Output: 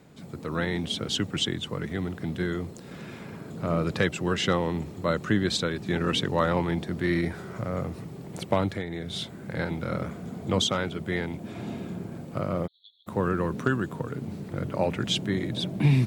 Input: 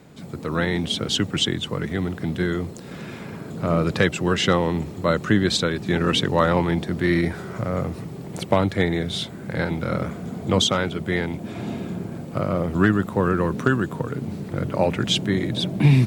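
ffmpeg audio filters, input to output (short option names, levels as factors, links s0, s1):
-filter_complex "[0:a]asettb=1/sr,asplit=3[s0][s1][s2];[s0]atrim=end=8.744[s3];[s1]atrim=start=8.74:end=9.16,asetpts=PTS-STARTPTS,afade=t=in:d=0.004:c=qsin,afade=t=out:st=0.416:d=0.004:c=qsin,acompressor=threshold=0.0631:ratio=6[s4];[s2]atrim=start=9.156[s5];[s3][s4]acrossfade=d=0.004:c1=hsin:c2=qsin[s6];[s6][s5]acrossfade=d=0.004:c1=qsin:c2=hsin,asplit=3[s7][s8][s9];[s7]afade=t=out:st=12.66:d=0.02[s10];[s8]asuperpass=centerf=3800:order=12:qfactor=3.6,afade=t=in:st=12.66:d=0.02,afade=t=out:st=13.06:d=0.02[s11];[s9]afade=t=in:st=13.06:d=0.02[s12];[s10][s11][s12]amix=inputs=3:normalize=0,volume=0.531"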